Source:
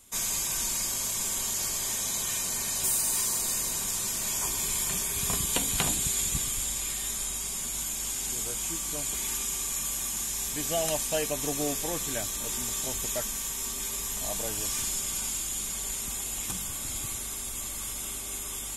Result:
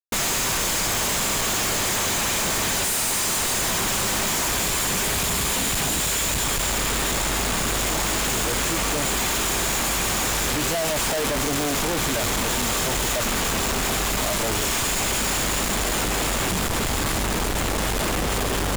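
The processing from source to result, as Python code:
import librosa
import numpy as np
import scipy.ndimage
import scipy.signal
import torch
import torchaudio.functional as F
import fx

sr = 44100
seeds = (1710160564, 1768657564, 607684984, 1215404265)

y = fx.schmitt(x, sr, flips_db=-32.5)
y = y * 10.0 ** (8.0 / 20.0)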